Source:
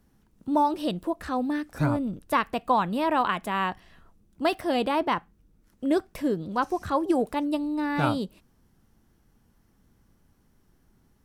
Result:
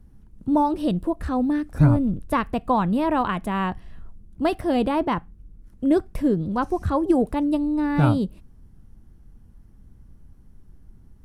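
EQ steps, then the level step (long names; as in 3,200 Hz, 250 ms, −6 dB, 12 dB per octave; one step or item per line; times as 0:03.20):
RIAA equalisation playback
high-shelf EQ 6,600 Hz +11.5 dB
parametric band 10,000 Hz +6 dB 0.51 octaves
0.0 dB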